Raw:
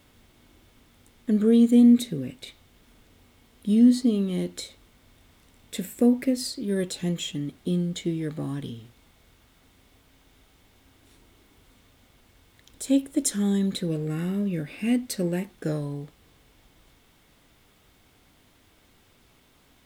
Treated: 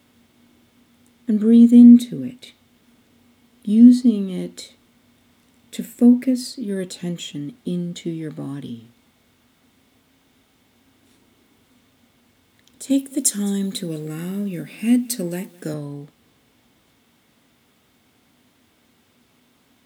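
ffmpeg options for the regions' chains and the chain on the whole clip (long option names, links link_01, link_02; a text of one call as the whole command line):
ffmpeg -i in.wav -filter_complex "[0:a]asettb=1/sr,asplit=3[link_01][link_02][link_03];[link_01]atrim=end=12.904[link_04];[link_02]atrim=start=12.9:end=15.74,asetpts=PTS-STARTPTS,afade=type=in:duration=0.004:curve=qsin,afade=type=out:start_time=2.836:duration=0.004:curve=qsin,highpass=120,highshelf=frequency=5700:gain=11.5,aecho=1:1:210:0.0708,atrim=end_sample=125244[link_05];[link_03]atrim=start=15.736[link_06];[link_04][link_05]acrossfade=duration=0.004:curve1=hsin:curve2=qsin[link_07];[link_07][link_06]acrossfade=duration=0.004:curve1=qsin:curve2=hsin,highpass=100,equalizer=frequency=240:width_type=o:width=0.26:gain=8.5" out.wav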